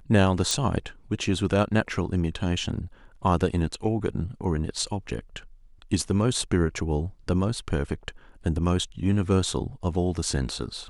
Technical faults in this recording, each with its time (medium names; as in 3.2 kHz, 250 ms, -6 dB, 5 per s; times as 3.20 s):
0.51 s: pop